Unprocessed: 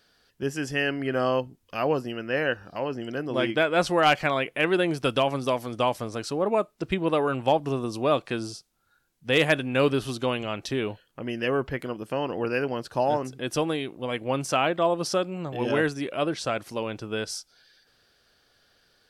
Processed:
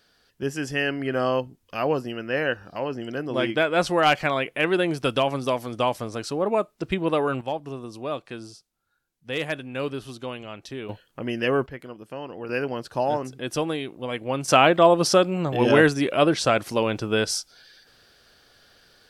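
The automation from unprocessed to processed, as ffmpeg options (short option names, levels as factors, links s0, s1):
-af "asetnsamples=n=441:p=0,asendcmd='7.41 volume volume -7dB;10.89 volume volume 3dB;11.66 volume volume -7dB;12.49 volume volume 0dB;14.48 volume volume 7.5dB',volume=1.12"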